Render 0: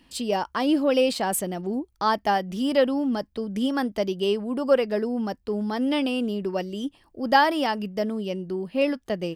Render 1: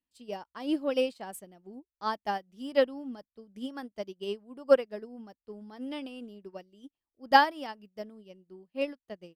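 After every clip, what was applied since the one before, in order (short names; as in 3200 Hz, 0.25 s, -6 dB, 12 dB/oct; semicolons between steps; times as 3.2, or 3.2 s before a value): upward expander 2.5:1, over -38 dBFS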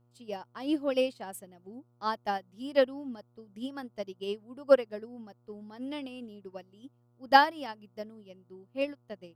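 buzz 120 Hz, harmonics 12, -67 dBFS -8 dB/oct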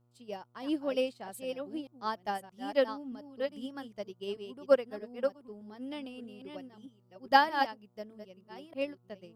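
reverse delay 0.624 s, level -7 dB; gain -3 dB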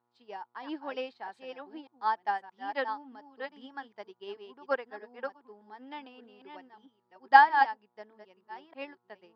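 speaker cabinet 420–4300 Hz, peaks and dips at 570 Hz -9 dB, 890 Hz +10 dB, 1700 Hz +7 dB, 2900 Hz -5 dB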